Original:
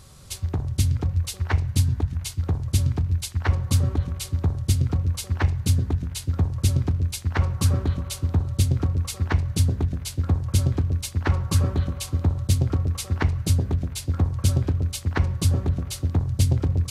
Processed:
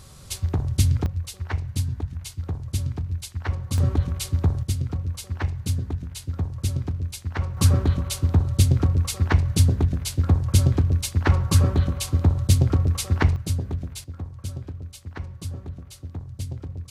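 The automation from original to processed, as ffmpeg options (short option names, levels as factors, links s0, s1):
-af "asetnsamples=n=441:p=0,asendcmd='1.06 volume volume -5dB;3.78 volume volume 2dB;4.63 volume volume -4.5dB;7.57 volume volume 3dB;13.36 volume volume -4.5dB;14.04 volume volume -12dB',volume=1.26"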